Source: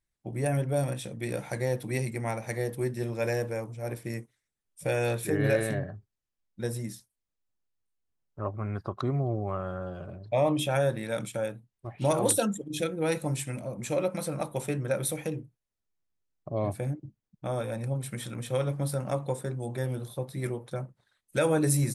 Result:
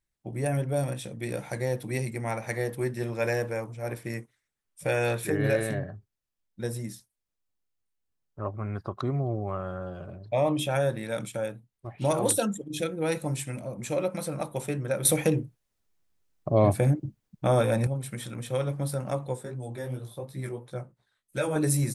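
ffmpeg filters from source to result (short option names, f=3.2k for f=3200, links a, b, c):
-filter_complex "[0:a]asettb=1/sr,asplit=3[a][b][c];[a]atrim=end=2.314[d];[b]atrim=start=2.31:end=5.32,asetpts=PTS-STARTPTS,afade=t=in:d=0.004:c=qsin,afade=t=out:st=3.006:d=0.004:c=qsin,equalizer=f=1.5k:t=o:w=2.2:g=4.5[e];[c]atrim=start=5.316[f];[d][e]acrossfade=d=0.004:c1=hsin:c2=qsin[g];[g][f]acrossfade=d=0.004:c1=qsin:c2=hsin,asettb=1/sr,asplit=3[h][i][j];[h]atrim=end=19.284[k];[i]atrim=start=19.28:end=21.56,asetpts=PTS-STARTPTS,afade=t=in:d=0.004:c=qsin,afade=t=out:st=2.276:d=0.004:c=qsin,flanger=delay=15:depth=3.9:speed=2.8[l];[j]atrim=start=21.556[m];[k][l]acrossfade=d=0.004:c1=hsin:c2=qsin[n];[n][m]acrossfade=d=0.004:c1=qsin:c2=hsin,asplit=3[o][p][q];[o]atrim=end=15.052[r];[p]atrim=start=15.048:end=17.872,asetpts=PTS-STARTPTS,volume=9dB[s];[q]atrim=start=17.868[t];[r][s]acrossfade=d=0.004:c1=hsin:c2=hsin[u];[u][t]acrossfade=d=0.004:c1=hsin:c2=hsin"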